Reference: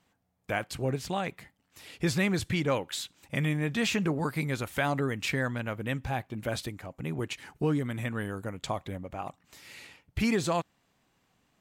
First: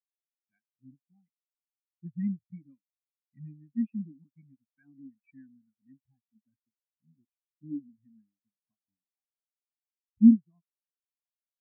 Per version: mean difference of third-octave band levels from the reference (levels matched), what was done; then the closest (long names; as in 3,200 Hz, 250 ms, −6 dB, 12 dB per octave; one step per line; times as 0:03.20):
27.0 dB: octave-band graphic EQ 250/500/2,000 Hz +10/−10/+7 dB
in parallel at −7 dB: bit reduction 5 bits
on the sum: every bin expanded away from the loudest bin 4 to 1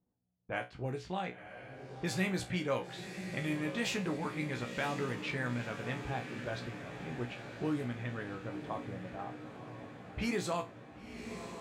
7.5 dB: low-pass that shuts in the quiet parts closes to 430 Hz, open at −24 dBFS
low-shelf EQ 200 Hz −3 dB
tuned comb filter 61 Hz, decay 0.23 s, harmonics all, mix 90%
on a send: feedback delay with all-pass diffusion 1,010 ms, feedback 63%, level −9 dB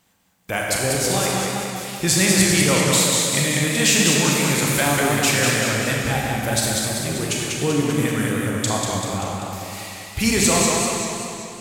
12.5 dB: high-shelf EQ 5,400 Hz +12 dB
four-comb reverb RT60 2 s, combs from 28 ms, DRR −1.5 dB
dynamic equaliser 7,900 Hz, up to +7 dB, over −45 dBFS, Q 0.85
feedback echo with a swinging delay time 194 ms, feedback 60%, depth 95 cents, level −4 dB
level +4.5 dB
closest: second